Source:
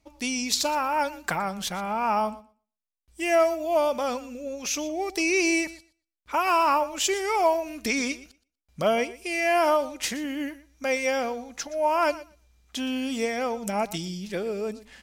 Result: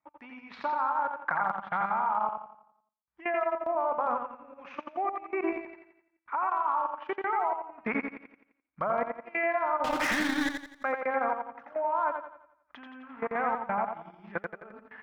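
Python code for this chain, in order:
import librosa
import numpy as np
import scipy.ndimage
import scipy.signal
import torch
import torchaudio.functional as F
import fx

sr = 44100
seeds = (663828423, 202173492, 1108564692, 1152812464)

p1 = fx.delta_mod(x, sr, bps=32000, step_db=-27.5, at=(13.03, 13.52))
p2 = scipy.signal.sosfilt(scipy.signal.butter(4, 1700.0, 'lowpass', fs=sr, output='sos'), p1)
p3 = fx.env_lowpass_down(p2, sr, base_hz=1300.0, full_db=-24.0)
p4 = scipy.signal.sosfilt(scipy.signal.butter(2, 130.0, 'highpass', fs=sr, output='sos'), p3)
p5 = fx.low_shelf_res(p4, sr, hz=700.0, db=-11.5, q=1.5)
p6 = fx.over_compress(p5, sr, threshold_db=-39.0, ratio=-0.5, at=(7.53, 8.13))
p7 = fx.leveller(p6, sr, passes=5, at=(9.84, 10.49))
p8 = fx.level_steps(p7, sr, step_db=19)
p9 = p8 + fx.echo_feedback(p8, sr, ms=86, feedback_pct=51, wet_db=-3.5, dry=0)
p10 = fx.transient(p9, sr, attack_db=1, sustain_db=-11)
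y = F.gain(torch.from_numpy(p10), 8.5).numpy()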